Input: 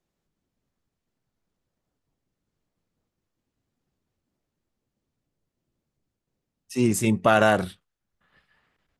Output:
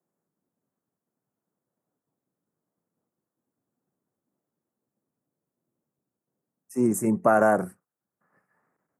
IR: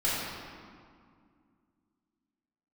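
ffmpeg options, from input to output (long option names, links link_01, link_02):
-filter_complex "[0:a]acrossover=split=130|690|2600[link_01][link_02][link_03][link_04];[link_01]acrusher=bits=3:mix=0:aa=0.000001[link_05];[link_05][link_02][link_03][link_04]amix=inputs=4:normalize=0,asuperstop=centerf=3500:order=4:qfactor=0.51"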